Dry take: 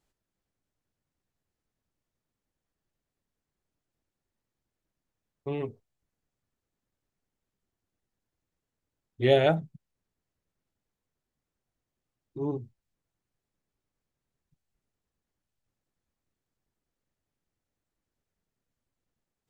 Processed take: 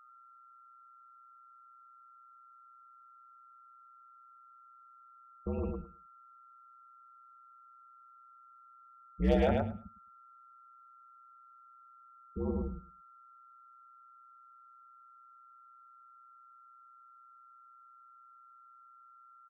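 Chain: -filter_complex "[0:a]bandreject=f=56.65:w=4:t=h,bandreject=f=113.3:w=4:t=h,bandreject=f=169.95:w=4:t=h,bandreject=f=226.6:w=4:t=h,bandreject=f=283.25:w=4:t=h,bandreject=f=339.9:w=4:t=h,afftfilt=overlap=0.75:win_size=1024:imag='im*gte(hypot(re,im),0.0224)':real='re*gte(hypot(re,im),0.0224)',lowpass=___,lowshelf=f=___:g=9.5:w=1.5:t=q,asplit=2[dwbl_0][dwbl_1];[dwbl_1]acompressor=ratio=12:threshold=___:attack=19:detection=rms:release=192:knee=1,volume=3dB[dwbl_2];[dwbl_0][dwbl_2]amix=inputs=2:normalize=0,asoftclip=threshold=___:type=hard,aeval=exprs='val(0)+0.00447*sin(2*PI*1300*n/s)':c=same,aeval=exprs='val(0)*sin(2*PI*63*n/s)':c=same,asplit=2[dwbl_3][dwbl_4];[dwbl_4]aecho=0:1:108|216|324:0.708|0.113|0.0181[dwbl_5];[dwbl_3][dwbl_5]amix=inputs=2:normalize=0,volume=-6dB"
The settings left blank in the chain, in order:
2500, 150, -34dB, -12dB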